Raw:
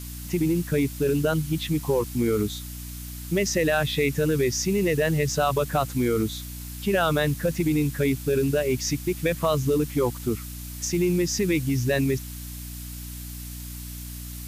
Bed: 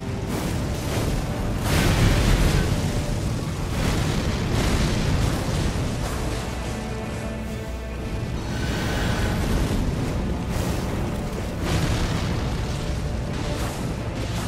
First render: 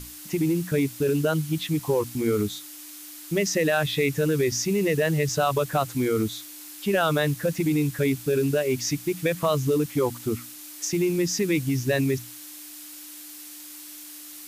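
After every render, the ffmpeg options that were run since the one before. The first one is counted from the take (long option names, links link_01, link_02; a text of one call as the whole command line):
ffmpeg -i in.wav -af "bandreject=frequency=60:width_type=h:width=6,bandreject=frequency=120:width_type=h:width=6,bandreject=frequency=180:width_type=h:width=6,bandreject=frequency=240:width_type=h:width=6" out.wav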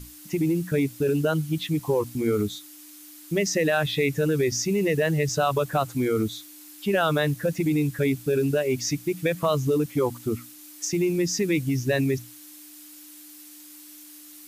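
ffmpeg -i in.wav -af "afftdn=noise_reduction=6:noise_floor=-42" out.wav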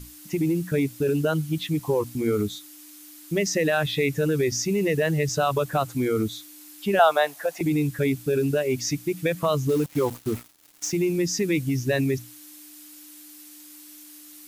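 ffmpeg -i in.wav -filter_complex "[0:a]asettb=1/sr,asplit=3[link_01][link_02][link_03];[link_01]atrim=end=6.994[link_04];[link_02]atrim=start=6.99:end=7.61,asetpts=PTS-STARTPTS,afade=type=in:duration=0.004:curve=qsin,afade=type=out:start_time=0.616:duration=0.004:curve=qsin,highpass=frequency=730:width_type=q:width=4[link_05];[link_03]atrim=start=7.606[link_06];[link_04][link_05]acrossfade=duration=0.004:curve1=hsin:curve2=qsin[link_07];[link_07][link_06]acrossfade=duration=0.004:curve1=qsin:curve2=hsin,asettb=1/sr,asplit=3[link_08][link_09][link_10];[link_08]atrim=end=9.694[link_11];[link_09]atrim=start=9.69:end=10.92,asetpts=PTS-STARTPTS,afade=type=in:duration=0.004:curve=qsin,afade=type=out:start_time=1.226:duration=0.004:curve=qsin,acrusher=bits=5:mix=0:aa=0.5[link_12];[link_10]atrim=start=10.916[link_13];[link_11][link_12]acrossfade=duration=0.004:curve1=hsin:curve2=qsin[link_14];[link_14][link_13]acrossfade=duration=0.004:curve1=qsin:curve2=hsin" out.wav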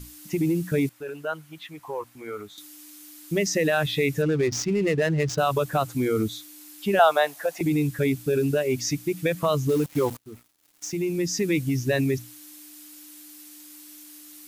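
ffmpeg -i in.wav -filter_complex "[0:a]asettb=1/sr,asplit=3[link_01][link_02][link_03];[link_01]atrim=end=0.894[link_04];[link_02]atrim=start=0.89:end=2.58,asetpts=PTS-STARTPTS,afade=type=in:duration=0.004:curve=qsin,afade=type=out:start_time=1.686:duration=0.004:curve=qsin,acrossover=split=600 2300:gain=0.1 1 0.224[link_05][link_06][link_07];[link_05][link_06][link_07]amix=inputs=3:normalize=0[link_08];[link_03]atrim=start=2.576[link_09];[link_04][link_08]acrossfade=duration=0.004:curve1=hsin:curve2=qsin[link_10];[link_10][link_09]acrossfade=duration=0.004:curve1=qsin:curve2=hsin,asettb=1/sr,asplit=3[link_11][link_12][link_13];[link_11]atrim=end=4.224[link_14];[link_12]atrim=start=4.22:end=5.38,asetpts=PTS-STARTPTS,afade=type=in:duration=0.004:curve=qsin,afade=type=out:start_time=1.156:duration=0.004:curve=qsin,adynamicsmooth=sensitivity=7.5:basefreq=1200[link_15];[link_13]atrim=start=5.376[link_16];[link_14][link_15]acrossfade=duration=0.004:curve1=hsin:curve2=qsin[link_17];[link_17][link_16]acrossfade=duration=0.004:curve1=qsin:curve2=hsin,asplit=2[link_18][link_19];[link_18]atrim=end=10.17,asetpts=PTS-STARTPTS,afade=type=out:start_time=10.166:duration=0.004:curve=hsin:silence=0.0668344[link_20];[link_19]atrim=start=10.17,asetpts=PTS-STARTPTS,afade=type=in:duration=1.31:silence=0.0668344[link_21];[link_20][link_21]concat=n=2:v=0:a=1" out.wav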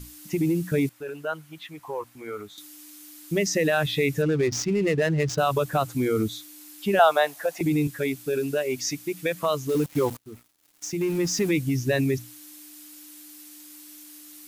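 ffmpeg -i in.wav -filter_complex "[0:a]asettb=1/sr,asplit=3[link_01][link_02][link_03];[link_01]atrim=end=7.874[link_04];[link_02]atrim=start=7.87:end=9.75,asetpts=PTS-STARTPTS,afade=type=in:duration=0.004:curve=qsin,afade=type=out:start_time=1.876:duration=0.004:curve=qsin,highpass=frequency=370:poles=1[link_05];[link_03]atrim=start=9.746[link_06];[link_04][link_05]acrossfade=duration=0.004:curve1=hsin:curve2=qsin[link_07];[link_07][link_06]acrossfade=duration=0.004:curve1=qsin:curve2=hsin,asettb=1/sr,asplit=3[link_08][link_09][link_10];[link_08]atrim=end=11.014[link_11];[link_09]atrim=start=11.01:end=11.51,asetpts=PTS-STARTPTS,afade=type=in:duration=0.004:curve=qsin,afade=type=out:start_time=0.496:duration=0.004:curve=qsin,aeval=exprs='val(0)+0.5*0.0168*sgn(val(0))':channel_layout=same[link_12];[link_10]atrim=start=11.506[link_13];[link_11][link_12]acrossfade=duration=0.004:curve1=hsin:curve2=qsin[link_14];[link_14][link_13]acrossfade=duration=0.004:curve1=qsin:curve2=hsin" out.wav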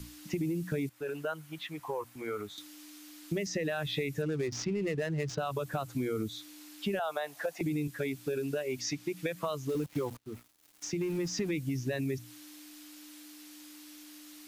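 ffmpeg -i in.wav -filter_complex "[0:a]alimiter=limit=-14dB:level=0:latency=1:release=195,acrossover=split=110|5800[link_01][link_02][link_03];[link_01]acompressor=threshold=-49dB:ratio=4[link_04];[link_02]acompressor=threshold=-32dB:ratio=4[link_05];[link_03]acompressor=threshold=-57dB:ratio=4[link_06];[link_04][link_05][link_06]amix=inputs=3:normalize=0" out.wav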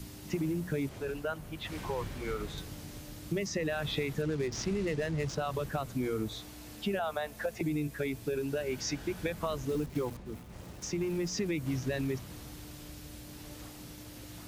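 ffmpeg -i in.wav -i bed.wav -filter_complex "[1:a]volume=-22.5dB[link_01];[0:a][link_01]amix=inputs=2:normalize=0" out.wav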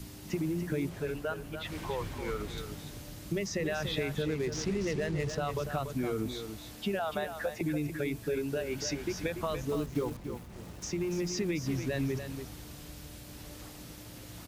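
ffmpeg -i in.wav -af "aecho=1:1:288:0.376" out.wav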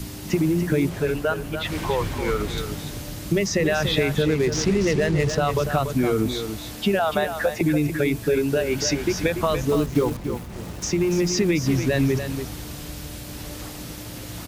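ffmpeg -i in.wav -af "volume=11.5dB" out.wav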